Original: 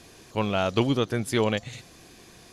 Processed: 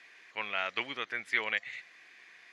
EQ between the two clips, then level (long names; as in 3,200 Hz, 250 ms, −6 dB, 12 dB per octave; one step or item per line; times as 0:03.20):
low-pass with resonance 2,000 Hz, resonance Q 4.6
first difference
low-shelf EQ 91 Hz −9 dB
+5.5 dB